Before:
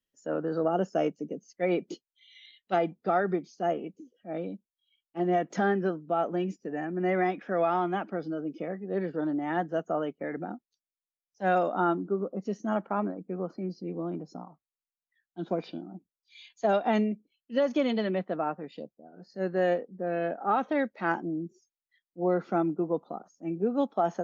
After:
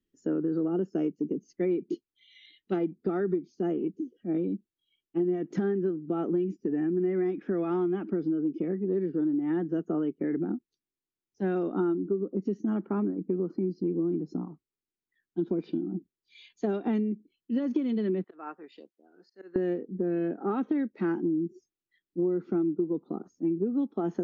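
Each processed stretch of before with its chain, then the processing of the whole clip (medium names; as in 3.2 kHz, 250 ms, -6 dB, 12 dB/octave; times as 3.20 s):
18.24–19.56 s: high-pass 1 kHz + dynamic bell 3.1 kHz, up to -4 dB, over -53 dBFS, Q 0.71 + slow attack 176 ms
whole clip: low-pass 4 kHz 6 dB/octave; resonant low shelf 470 Hz +9 dB, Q 3; compression 6:1, threshold -26 dBFS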